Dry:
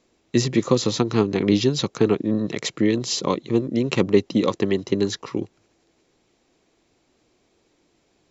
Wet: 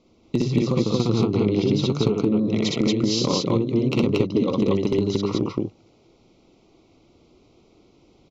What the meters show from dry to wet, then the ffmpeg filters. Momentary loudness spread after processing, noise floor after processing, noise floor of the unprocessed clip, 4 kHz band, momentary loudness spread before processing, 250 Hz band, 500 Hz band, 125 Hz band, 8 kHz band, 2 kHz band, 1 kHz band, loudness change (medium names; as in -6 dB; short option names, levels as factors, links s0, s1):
4 LU, -58 dBFS, -66 dBFS, -0.5 dB, 6 LU, +1.0 dB, -1.0 dB, +3.0 dB, no reading, -4.5 dB, -2.0 dB, 0.0 dB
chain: -filter_complex "[0:a]lowpass=f=5800:w=0.5412,lowpass=f=5800:w=1.3066,lowshelf=f=460:g=8,acompressor=threshold=0.112:ratio=16,asoftclip=type=hard:threshold=0.266,asuperstop=centerf=1700:order=4:qfactor=2.5,asplit=2[s0][s1];[s1]aecho=0:1:61.22|230.3:0.891|1[s2];[s0][s2]amix=inputs=2:normalize=0"